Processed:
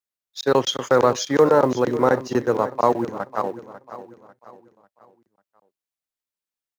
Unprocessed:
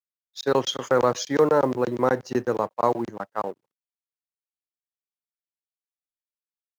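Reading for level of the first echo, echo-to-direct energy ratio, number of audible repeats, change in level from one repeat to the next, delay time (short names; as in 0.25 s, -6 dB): -14.0 dB, -13.0 dB, 3, -8.0 dB, 0.545 s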